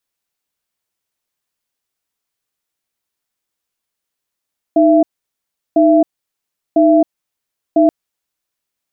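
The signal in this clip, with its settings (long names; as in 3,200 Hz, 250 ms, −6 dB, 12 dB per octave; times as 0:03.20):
tone pair in a cadence 311 Hz, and 668 Hz, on 0.27 s, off 0.73 s, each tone −9.5 dBFS 3.13 s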